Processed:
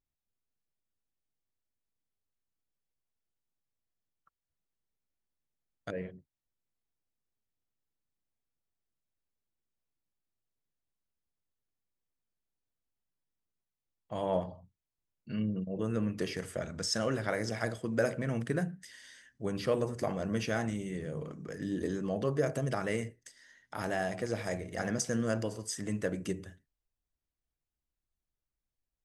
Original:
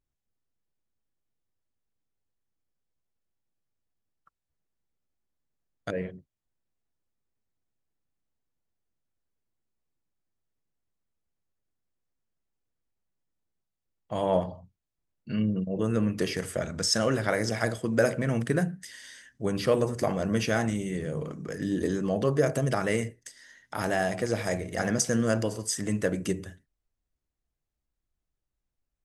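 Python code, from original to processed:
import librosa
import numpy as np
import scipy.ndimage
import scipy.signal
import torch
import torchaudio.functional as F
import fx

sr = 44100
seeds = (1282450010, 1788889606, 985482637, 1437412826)

y = fx.high_shelf(x, sr, hz=9200.0, db=-5.5)
y = y * 10.0 ** (-6.0 / 20.0)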